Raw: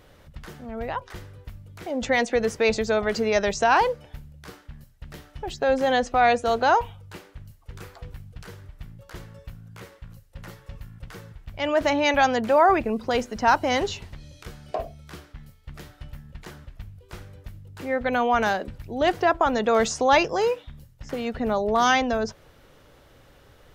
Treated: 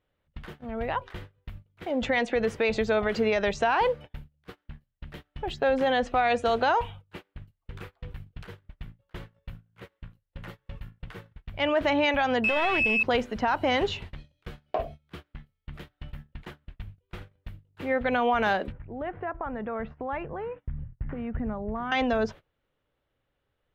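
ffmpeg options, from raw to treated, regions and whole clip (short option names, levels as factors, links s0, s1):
-filter_complex "[0:a]asettb=1/sr,asplit=3[s0][s1][s2];[s0]atrim=end=6.134[s3];[s1]atrim=start=6.13:end=6.91,asetpts=PTS-STARTPTS,afade=t=in:d=0.004:c=qsin,afade=t=out:st=0.776:d=0.004:c=qsin,lowpass=9100,highshelf=f=6100:g=10[s4];[s2]atrim=start=6.906[s5];[s3][s4]acrossfade=d=0.004:c1=hsin:c2=qsin[s6];[s6][s5]acrossfade=d=0.004:c1=qsin:c2=hsin,asettb=1/sr,asplit=3[s7][s8][s9];[s7]atrim=end=12.444[s10];[s8]atrim=start=12.44:end=13.03,asetpts=PTS-STARTPTS,afade=t=in:d=0.004:c=qsin,afade=t=out:st=0.586:d=0.004:c=qsin,aeval=exprs='val(0)+0.0891*sin(2*PI*2600*n/s)':c=same,aeval=exprs='clip(val(0),-1,0.0794)':c=same[s11];[s9]atrim=start=13.026[s12];[s10][s11]acrossfade=d=0.004:c1=hsin:c2=qsin[s13];[s13][s12]acrossfade=d=0.004:c1=qsin:c2=hsin,asettb=1/sr,asplit=3[s14][s15][s16];[s14]atrim=end=18.724[s17];[s15]atrim=start=18.72:end=21.92,asetpts=PTS-STARTPTS,afade=t=in:d=0.004:c=qsin,afade=t=out:st=3.196:d=0.004:c=qsin,acompressor=threshold=0.0112:ratio=2:attack=3.2:release=140:knee=1:detection=peak,lowpass=f=2000:w=0.5412,lowpass=f=2000:w=1.3066,asubboost=boost=5.5:cutoff=220[s18];[s16]atrim=start=21.916[s19];[s17][s18]acrossfade=d=0.004:c1=hsin:c2=qsin[s20];[s20][s19]acrossfade=d=0.004:c1=qsin:c2=hsin,agate=range=0.0562:threshold=0.01:ratio=16:detection=peak,highshelf=f=4300:t=q:w=1.5:g=-9,alimiter=limit=0.168:level=0:latency=1:release=70"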